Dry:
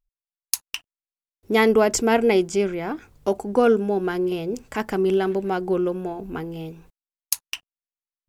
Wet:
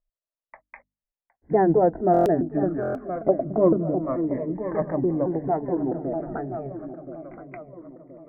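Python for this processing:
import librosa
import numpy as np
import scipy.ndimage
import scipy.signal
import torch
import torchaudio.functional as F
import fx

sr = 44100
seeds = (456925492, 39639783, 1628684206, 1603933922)

y = fx.pitch_ramps(x, sr, semitones=-6.5, every_ms=219)
y = fx.echo_feedback(y, sr, ms=1023, feedback_pct=45, wet_db=-12.5)
y = fx.env_lowpass_down(y, sr, base_hz=890.0, full_db=-18.5)
y = scipy.signal.sosfilt(scipy.signal.butter(12, 2000.0, 'lowpass', fs=sr, output='sos'), y)
y = fx.peak_eq(y, sr, hz=640.0, db=14.0, octaves=0.57)
y = fx.hum_notches(y, sr, base_hz=50, count=6)
y = y + 10.0 ** (-21.5 / 20.0) * np.pad(y, (int(762 * sr / 1000.0), 0))[:len(y)]
y = fx.buffer_glitch(y, sr, at_s=(2.12, 2.81), block=1024, repeats=5)
y = fx.notch_cascade(y, sr, direction='falling', hz=0.25)
y = F.gain(torch.from_numpy(y), -1.5).numpy()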